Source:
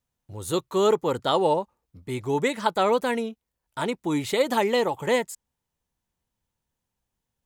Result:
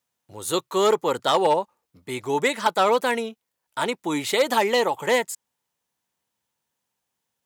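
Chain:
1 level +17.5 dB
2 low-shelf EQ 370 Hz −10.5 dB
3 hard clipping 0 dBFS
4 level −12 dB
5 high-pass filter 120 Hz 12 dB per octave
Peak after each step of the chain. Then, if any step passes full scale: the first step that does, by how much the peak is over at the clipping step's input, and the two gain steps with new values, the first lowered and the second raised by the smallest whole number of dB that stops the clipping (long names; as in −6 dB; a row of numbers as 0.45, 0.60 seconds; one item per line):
+9.0, +8.5, 0.0, −12.0, −9.5 dBFS
step 1, 8.5 dB
step 1 +8.5 dB, step 4 −3 dB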